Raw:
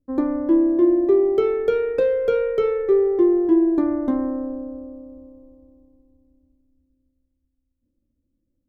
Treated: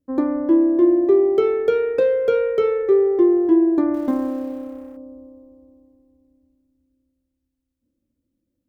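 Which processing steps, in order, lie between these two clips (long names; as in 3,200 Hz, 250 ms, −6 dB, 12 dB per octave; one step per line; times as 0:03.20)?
0:03.94–0:04.97: mu-law and A-law mismatch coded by A
high-pass filter 130 Hz 6 dB per octave
level +2 dB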